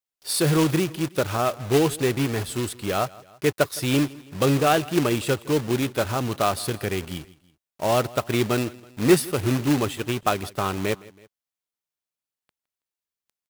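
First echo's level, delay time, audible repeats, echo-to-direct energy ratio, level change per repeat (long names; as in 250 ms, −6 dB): −21.5 dB, 163 ms, 2, −20.5 dB, −5.5 dB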